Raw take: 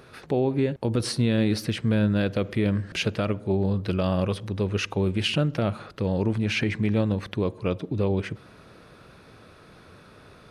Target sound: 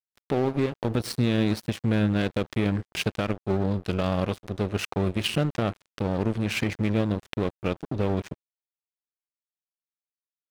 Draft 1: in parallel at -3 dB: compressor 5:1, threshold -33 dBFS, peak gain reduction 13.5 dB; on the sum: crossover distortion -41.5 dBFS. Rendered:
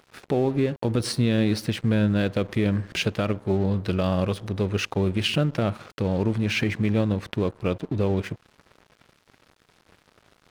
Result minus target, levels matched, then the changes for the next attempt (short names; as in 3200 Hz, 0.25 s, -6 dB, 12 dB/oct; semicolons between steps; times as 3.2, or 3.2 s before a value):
crossover distortion: distortion -10 dB
change: crossover distortion -29.5 dBFS